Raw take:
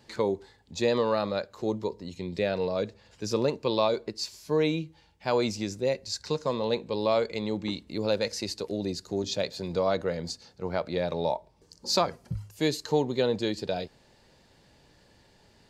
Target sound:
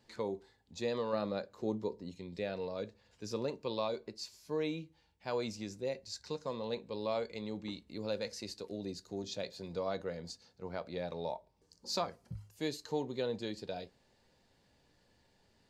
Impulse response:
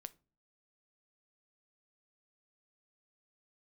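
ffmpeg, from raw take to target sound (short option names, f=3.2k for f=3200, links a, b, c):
-filter_complex "[0:a]asettb=1/sr,asplit=3[a][b][c];[a]atrim=end=1.134[d];[b]atrim=start=1.13:end=2.12,asetpts=PTS-STARTPTS,afade=t=in:d=0.004:c=qsin,afade=t=out:st=0.986:d=0.004:c=qsin,equalizer=f=270:t=o:w=2.8:g=5.5[e];[c]atrim=start=2.116[f];[d][e]acrossfade=d=0.004:c1=hsin:c2=qsin[g];[g][f]acrossfade=d=0.004:c1=qsin:c2=hsin[h];[1:a]atrim=start_sample=2205,atrim=end_sample=4410,asetrate=74970,aresample=44100[i];[h][i]afir=irnorm=-1:irlink=0"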